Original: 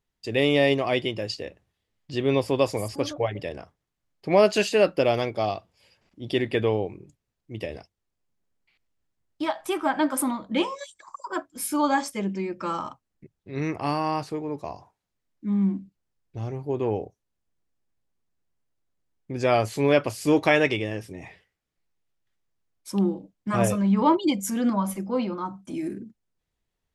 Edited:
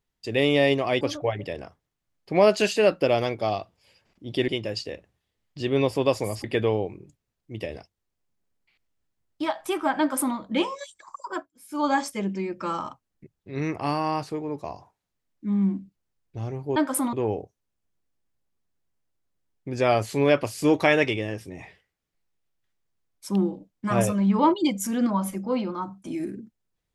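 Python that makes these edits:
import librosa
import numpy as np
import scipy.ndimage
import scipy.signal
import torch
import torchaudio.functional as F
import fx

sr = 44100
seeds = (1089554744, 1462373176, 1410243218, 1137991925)

y = fx.edit(x, sr, fx.move(start_s=1.01, length_s=1.96, to_s=6.44),
    fx.duplicate(start_s=9.99, length_s=0.37, to_s=16.76),
    fx.fade_down_up(start_s=11.25, length_s=0.69, db=-19.5, fade_s=0.26, curve='qsin'), tone=tone)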